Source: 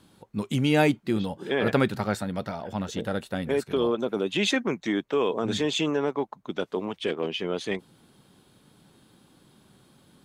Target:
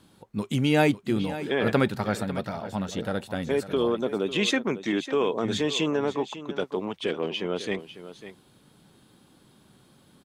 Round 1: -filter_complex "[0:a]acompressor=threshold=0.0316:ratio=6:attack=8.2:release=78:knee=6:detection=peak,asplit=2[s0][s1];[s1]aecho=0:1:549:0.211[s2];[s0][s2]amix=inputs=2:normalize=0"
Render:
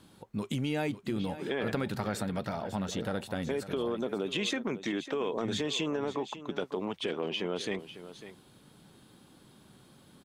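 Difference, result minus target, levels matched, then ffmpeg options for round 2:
compression: peak gain reduction +12.5 dB
-filter_complex "[0:a]asplit=2[s0][s1];[s1]aecho=0:1:549:0.211[s2];[s0][s2]amix=inputs=2:normalize=0"

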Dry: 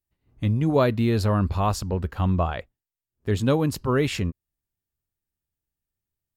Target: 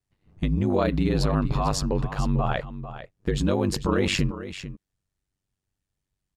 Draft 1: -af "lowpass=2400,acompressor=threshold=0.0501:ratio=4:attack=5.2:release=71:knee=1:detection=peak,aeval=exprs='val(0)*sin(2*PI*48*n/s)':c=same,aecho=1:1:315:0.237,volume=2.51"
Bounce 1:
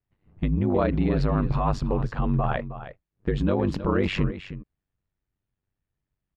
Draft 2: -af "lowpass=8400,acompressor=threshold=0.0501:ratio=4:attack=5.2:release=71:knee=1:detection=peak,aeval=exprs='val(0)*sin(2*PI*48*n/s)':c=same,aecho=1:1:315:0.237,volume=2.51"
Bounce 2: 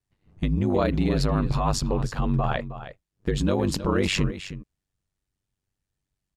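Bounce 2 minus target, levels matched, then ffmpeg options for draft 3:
echo 132 ms early
-af "lowpass=8400,acompressor=threshold=0.0501:ratio=4:attack=5.2:release=71:knee=1:detection=peak,aeval=exprs='val(0)*sin(2*PI*48*n/s)':c=same,aecho=1:1:447:0.237,volume=2.51"

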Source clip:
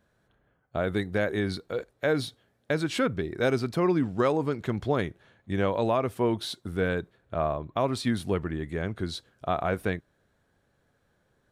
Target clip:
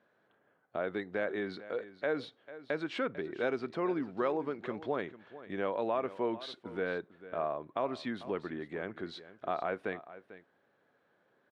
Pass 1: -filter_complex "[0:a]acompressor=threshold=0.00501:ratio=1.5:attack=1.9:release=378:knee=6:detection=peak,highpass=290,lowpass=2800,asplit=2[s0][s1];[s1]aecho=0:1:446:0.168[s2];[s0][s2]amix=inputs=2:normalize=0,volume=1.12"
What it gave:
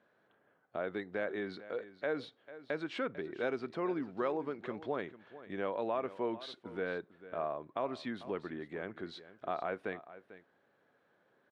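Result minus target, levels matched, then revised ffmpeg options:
compression: peak gain reduction +2.5 dB
-filter_complex "[0:a]acompressor=threshold=0.0119:ratio=1.5:attack=1.9:release=378:knee=6:detection=peak,highpass=290,lowpass=2800,asplit=2[s0][s1];[s1]aecho=0:1:446:0.168[s2];[s0][s2]amix=inputs=2:normalize=0,volume=1.12"

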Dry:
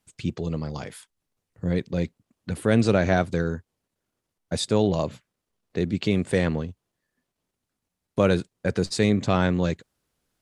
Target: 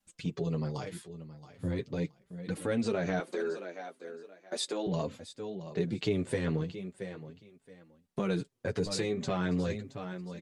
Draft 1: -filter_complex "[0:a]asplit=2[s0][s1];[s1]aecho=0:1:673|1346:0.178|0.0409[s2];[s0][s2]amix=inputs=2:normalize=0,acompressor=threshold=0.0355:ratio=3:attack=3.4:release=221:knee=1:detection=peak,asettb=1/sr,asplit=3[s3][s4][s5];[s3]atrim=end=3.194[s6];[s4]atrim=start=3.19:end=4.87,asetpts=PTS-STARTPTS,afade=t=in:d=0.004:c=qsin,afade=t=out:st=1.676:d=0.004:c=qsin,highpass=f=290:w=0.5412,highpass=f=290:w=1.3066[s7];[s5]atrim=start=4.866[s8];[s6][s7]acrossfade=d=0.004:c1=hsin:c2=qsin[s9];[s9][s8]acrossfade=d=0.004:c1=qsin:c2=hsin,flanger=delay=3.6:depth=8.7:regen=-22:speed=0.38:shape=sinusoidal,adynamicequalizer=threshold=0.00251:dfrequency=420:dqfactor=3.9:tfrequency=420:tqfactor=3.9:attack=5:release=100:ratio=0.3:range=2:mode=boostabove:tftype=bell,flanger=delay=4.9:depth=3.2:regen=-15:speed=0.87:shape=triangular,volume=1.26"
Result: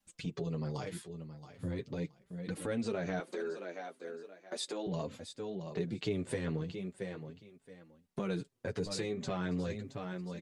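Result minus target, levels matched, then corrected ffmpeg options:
compression: peak gain reduction +4.5 dB
-filter_complex "[0:a]asplit=2[s0][s1];[s1]aecho=0:1:673|1346:0.178|0.0409[s2];[s0][s2]amix=inputs=2:normalize=0,acompressor=threshold=0.0794:ratio=3:attack=3.4:release=221:knee=1:detection=peak,asettb=1/sr,asplit=3[s3][s4][s5];[s3]atrim=end=3.194[s6];[s4]atrim=start=3.19:end=4.87,asetpts=PTS-STARTPTS,afade=t=in:d=0.004:c=qsin,afade=t=out:st=1.676:d=0.004:c=qsin,highpass=f=290:w=0.5412,highpass=f=290:w=1.3066[s7];[s5]atrim=start=4.866[s8];[s6][s7]acrossfade=d=0.004:c1=hsin:c2=qsin[s9];[s9][s8]acrossfade=d=0.004:c1=qsin:c2=hsin,flanger=delay=3.6:depth=8.7:regen=-22:speed=0.38:shape=sinusoidal,adynamicequalizer=threshold=0.00251:dfrequency=420:dqfactor=3.9:tfrequency=420:tqfactor=3.9:attack=5:release=100:ratio=0.3:range=2:mode=boostabove:tftype=bell,flanger=delay=4.9:depth=3.2:regen=-15:speed=0.87:shape=triangular,volume=1.26"

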